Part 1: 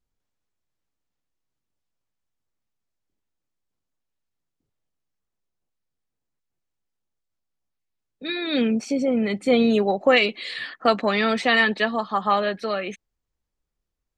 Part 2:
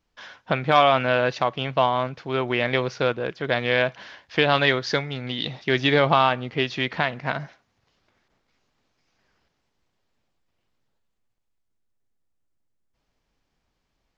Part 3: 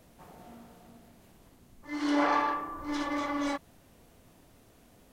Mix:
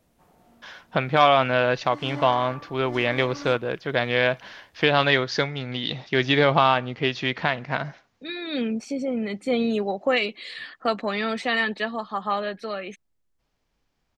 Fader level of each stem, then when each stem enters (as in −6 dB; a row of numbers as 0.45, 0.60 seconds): −5.0, 0.0, −7.5 decibels; 0.00, 0.45, 0.00 seconds